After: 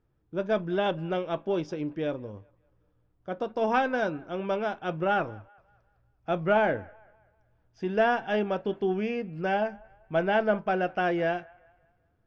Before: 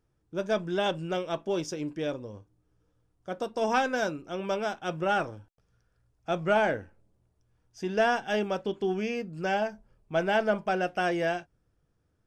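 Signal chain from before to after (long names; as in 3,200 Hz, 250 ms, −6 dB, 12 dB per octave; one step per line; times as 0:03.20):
high-frequency loss of the air 250 metres
on a send: delay with a band-pass on its return 194 ms, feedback 40%, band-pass 1,200 Hz, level −23.5 dB
on the sum: level +2 dB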